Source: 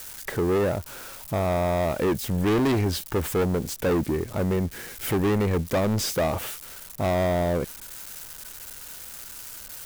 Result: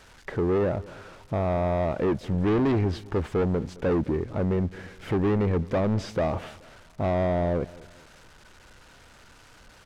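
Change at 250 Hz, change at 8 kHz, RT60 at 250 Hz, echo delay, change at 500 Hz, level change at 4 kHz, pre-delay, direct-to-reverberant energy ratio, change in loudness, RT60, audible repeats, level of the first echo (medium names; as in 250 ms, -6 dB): -0.5 dB, under -15 dB, no reverb, 214 ms, -1.0 dB, -10.0 dB, no reverb, no reverb, -1.0 dB, no reverb, 2, -20.5 dB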